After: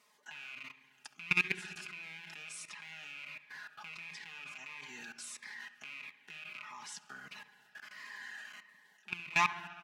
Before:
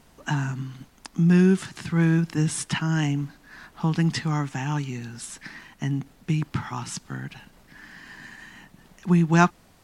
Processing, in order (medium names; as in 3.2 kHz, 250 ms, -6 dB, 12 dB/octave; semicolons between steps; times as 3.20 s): rattle on loud lows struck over -28 dBFS, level -11 dBFS; high-pass 1.2 kHz 12 dB/octave; tilt EQ -2.5 dB/octave; comb 4.8 ms, depth 83%; in parallel at -2 dB: compression 20:1, threshold -34 dBFS, peak gain reduction 19 dB; on the sum: simulated room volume 1900 m³, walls mixed, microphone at 0.41 m; level held to a coarse grid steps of 22 dB; feedback echo behind a low-pass 68 ms, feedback 77%, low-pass 3.4 kHz, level -15.5 dB; Shepard-style phaser falling 1.5 Hz; trim -2 dB